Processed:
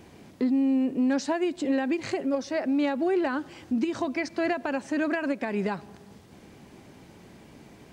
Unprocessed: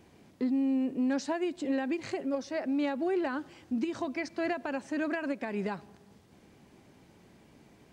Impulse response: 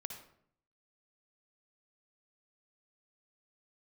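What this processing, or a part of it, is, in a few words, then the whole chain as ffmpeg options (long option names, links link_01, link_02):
parallel compression: -filter_complex "[0:a]asplit=2[link_01][link_02];[link_02]acompressor=threshold=-41dB:ratio=6,volume=-3dB[link_03];[link_01][link_03]amix=inputs=2:normalize=0,volume=3.5dB"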